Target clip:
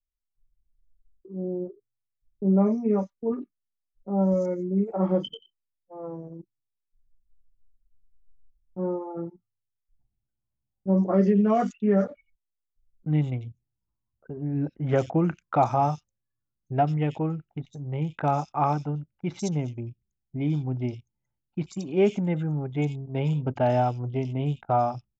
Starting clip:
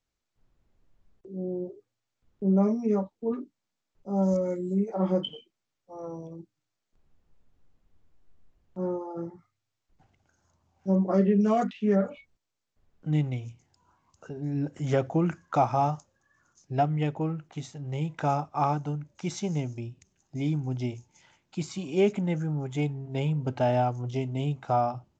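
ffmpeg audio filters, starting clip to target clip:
-filter_complex "[0:a]anlmdn=0.631,acrossover=split=3400[s0][s1];[s1]adelay=90[s2];[s0][s2]amix=inputs=2:normalize=0,volume=1.26"

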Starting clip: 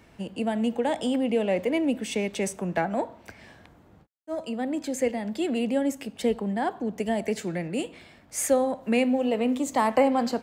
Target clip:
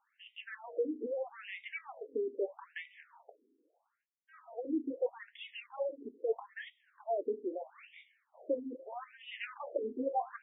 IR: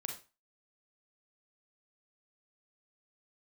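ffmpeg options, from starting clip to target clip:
-filter_complex "[0:a]agate=range=0.282:threshold=0.00501:ratio=16:detection=peak,highshelf=f=3300:g=-5,asplit=3[s0][s1][s2];[s0]afade=t=out:st=9.34:d=0.02[s3];[s1]acontrast=76,afade=t=in:st=9.34:d=0.02,afade=t=out:st=9.88:d=0.02[s4];[s2]afade=t=in:st=9.88:d=0.02[s5];[s3][s4][s5]amix=inputs=3:normalize=0,flanger=delay=8.6:depth=1.8:regen=-51:speed=0.2:shape=sinusoidal,asoftclip=type=tanh:threshold=0.0631,afftfilt=real='re*between(b*sr/1024,320*pow(2700/320,0.5+0.5*sin(2*PI*0.78*pts/sr))/1.41,320*pow(2700/320,0.5+0.5*sin(2*PI*0.78*pts/sr))*1.41)':imag='im*between(b*sr/1024,320*pow(2700/320,0.5+0.5*sin(2*PI*0.78*pts/sr))/1.41,320*pow(2700/320,0.5+0.5*sin(2*PI*0.78*pts/sr))*1.41)':win_size=1024:overlap=0.75,volume=1.26"

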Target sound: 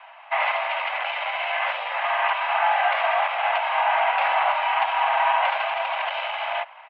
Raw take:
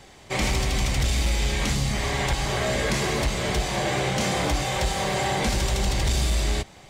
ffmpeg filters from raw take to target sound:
-af "bandreject=f=2000:w=7.2,asetrate=32097,aresample=44100,atempo=1.37395,highpass=f=260:t=q:w=0.5412,highpass=f=260:t=q:w=1.307,lowpass=f=2400:t=q:w=0.5176,lowpass=f=2400:t=q:w=0.7071,lowpass=f=2400:t=q:w=1.932,afreqshift=390,volume=2.24"

